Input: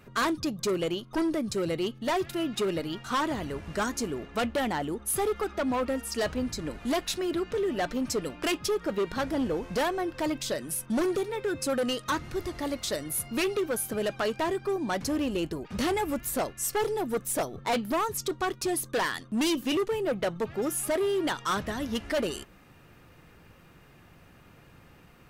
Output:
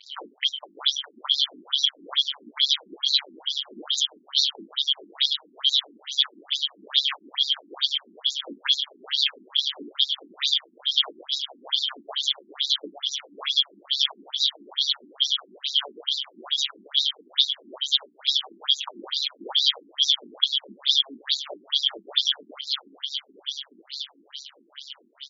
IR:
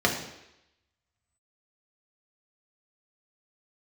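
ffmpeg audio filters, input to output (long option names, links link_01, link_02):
-filter_complex "[0:a]afftfilt=real='real(if(lt(b,272),68*(eq(floor(b/68),0)*2+eq(floor(b/68),1)*3+eq(floor(b/68),2)*0+eq(floor(b/68),3)*1)+mod(b,68),b),0)':imag='imag(if(lt(b,272),68*(eq(floor(b/68),0)*2+eq(floor(b/68),1)*3+eq(floor(b/68),2)*0+eq(floor(b/68),3)*1)+mod(b,68),b),0)':win_size=2048:overlap=0.75,lowpass=frequency=7300:width=0.5412,lowpass=frequency=7300:width=1.3066,lowshelf=frequency=67:gain=-11.5,asplit=2[link_01][link_02];[link_02]acompressor=threshold=-41dB:ratio=8,volume=1dB[link_03];[link_01][link_03]amix=inputs=2:normalize=0,aecho=1:1:611|1222|1833|2444|3055|3666|4277|4888:0.631|0.366|0.212|0.123|0.0714|0.0414|0.024|0.0139,acrusher=bits=6:mix=0:aa=0.5,acontrast=67,tremolo=f=140:d=0.889,asplit=2[link_04][link_05];[link_05]adelay=21,volume=-8.5dB[link_06];[link_04][link_06]amix=inputs=2:normalize=0,afftfilt=real='re*between(b*sr/1024,260*pow(5300/260,0.5+0.5*sin(2*PI*2.3*pts/sr))/1.41,260*pow(5300/260,0.5+0.5*sin(2*PI*2.3*pts/sr))*1.41)':imag='im*between(b*sr/1024,260*pow(5300/260,0.5+0.5*sin(2*PI*2.3*pts/sr))/1.41,260*pow(5300/260,0.5+0.5*sin(2*PI*2.3*pts/sr))*1.41)':win_size=1024:overlap=0.75,volume=3dB"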